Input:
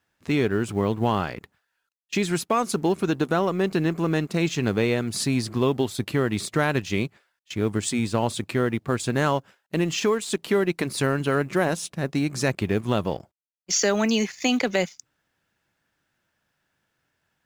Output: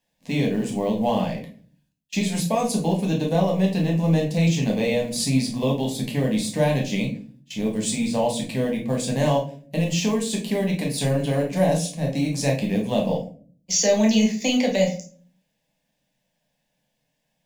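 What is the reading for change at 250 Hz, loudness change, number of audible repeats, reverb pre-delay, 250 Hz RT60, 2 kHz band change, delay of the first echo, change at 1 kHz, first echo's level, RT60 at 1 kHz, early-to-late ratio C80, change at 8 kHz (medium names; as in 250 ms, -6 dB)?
+3.0 dB, +2.0 dB, no echo, 10 ms, 0.75 s, -3.5 dB, no echo, -1.0 dB, no echo, 0.35 s, 13.5 dB, +2.5 dB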